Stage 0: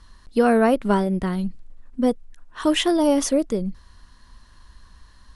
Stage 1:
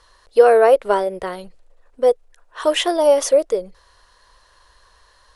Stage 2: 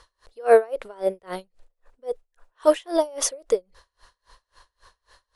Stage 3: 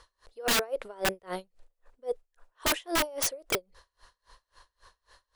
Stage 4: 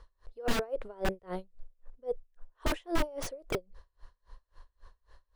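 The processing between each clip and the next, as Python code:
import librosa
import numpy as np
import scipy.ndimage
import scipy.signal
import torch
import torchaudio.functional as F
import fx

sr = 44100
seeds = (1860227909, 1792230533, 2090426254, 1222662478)

y1 = fx.low_shelf_res(x, sr, hz=340.0, db=-12.5, q=3.0)
y1 = y1 * librosa.db_to_amplitude(2.0)
y2 = y1 * 10.0 ** (-32 * (0.5 - 0.5 * np.cos(2.0 * np.pi * 3.7 * np.arange(len(y1)) / sr)) / 20.0)
y2 = y2 * librosa.db_to_amplitude(2.0)
y3 = (np.mod(10.0 ** (16.5 / 20.0) * y2 + 1.0, 2.0) - 1.0) / 10.0 ** (16.5 / 20.0)
y3 = y3 * librosa.db_to_amplitude(-3.0)
y4 = fx.tilt_eq(y3, sr, slope=-3.0)
y4 = y4 * librosa.db_to_amplitude(-5.0)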